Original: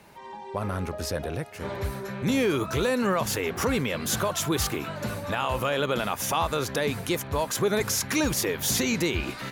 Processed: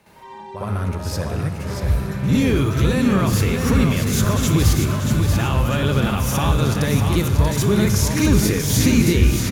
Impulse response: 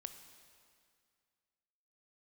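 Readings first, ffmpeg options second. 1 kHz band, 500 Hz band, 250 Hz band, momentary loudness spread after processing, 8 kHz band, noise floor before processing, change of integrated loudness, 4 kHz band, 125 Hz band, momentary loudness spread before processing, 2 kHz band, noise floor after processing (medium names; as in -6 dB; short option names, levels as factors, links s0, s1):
+2.5 dB, +3.0 dB, +10.5 dB, 8 LU, +4.0 dB, -41 dBFS, +8.5 dB, +4.0 dB, +16.0 dB, 9 LU, +3.5 dB, -36 dBFS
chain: -filter_complex "[0:a]asubboost=boost=5.5:cutoff=230,aecho=1:1:635|1270|1905|2540:0.501|0.165|0.0546|0.018,asplit=2[s0][s1];[1:a]atrim=start_sample=2205,adelay=62[s2];[s1][s2]afir=irnorm=-1:irlink=0,volume=3.55[s3];[s0][s3]amix=inputs=2:normalize=0,volume=0.596"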